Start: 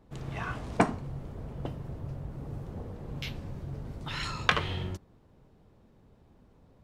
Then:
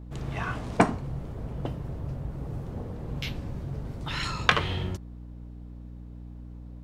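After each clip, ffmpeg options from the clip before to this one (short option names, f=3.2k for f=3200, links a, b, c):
-af "aeval=exprs='val(0)+0.00631*(sin(2*PI*60*n/s)+sin(2*PI*2*60*n/s)/2+sin(2*PI*3*60*n/s)/3+sin(2*PI*4*60*n/s)/4+sin(2*PI*5*60*n/s)/5)':c=same,volume=3.5dB"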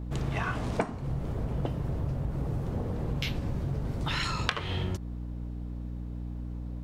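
-af "acompressor=threshold=-32dB:ratio=8,volume=5.5dB"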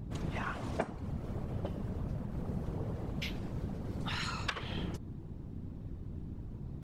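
-af "afftfilt=real='hypot(re,im)*cos(2*PI*random(0))':imag='hypot(re,im)*sin(2*PI*random(1))':win_size=512:overlap=0.75"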